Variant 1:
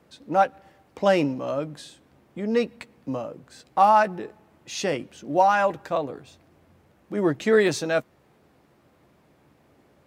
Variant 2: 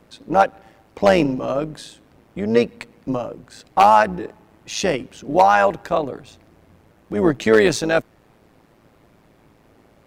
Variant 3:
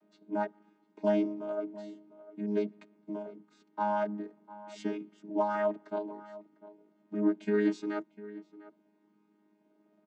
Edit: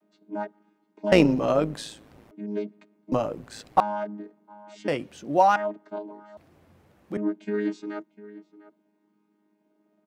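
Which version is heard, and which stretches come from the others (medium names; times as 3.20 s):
3
1.12–2.31 s: from 2
3.12–3.80 s: from 2
4.88–5.56 s: from 1
6.37–7.17 s: from 1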